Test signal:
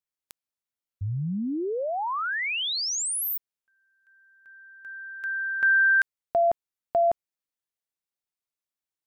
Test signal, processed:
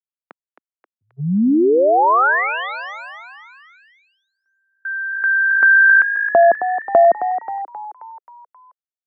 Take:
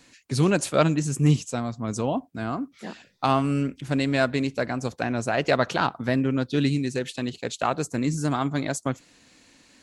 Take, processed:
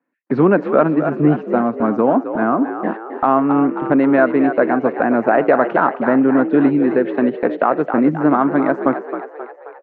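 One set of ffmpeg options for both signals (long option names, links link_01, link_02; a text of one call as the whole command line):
ffmpeg -i in.wav -filter_complex "[0:a]highpass=frequency=210:width=0.5412,highpass=frequency=210:width=1.3066,agate=range=-33dB:threshold=-43dB:ratio=16:release=76:detection=rms,lowpass=frequency=1600:width=0.5412,lowpass=frequency=1600:width=1.3066,acompressor=threshold=-32dB:ratio=2:attack=9.7:release=962:knee=6:detection=peak,asplit=7[link_01][link_02][link_03][link_04][link_05][link_06][link_07];[link_02]adelay=266,afreqshift=55,volume=-10dB[link_08];[link_03]adelay=532,afreqshift=110,volume=-15.5dB[link_09];[link_04]adelay=798,afreqshift=165,volume=-21dB[link_10];[link_05]adelay=1064,afreqshift=220,volume=-26.5dB[link_11];[link_06]adelay=1330,afreqshift=275,volume=-32.1dB[link_12];[link_07]adelay=1596,afreqshift=330,volume=-37.6dB[link_13];[link_01][link_08][link_09][link_10][link_11][link_12][link_13]amix=inputs=7:normalize=0,alimiter=level_in=19dB:limit=-1dB:release=50:level=0:latency=1,volume=-1dB" out.wav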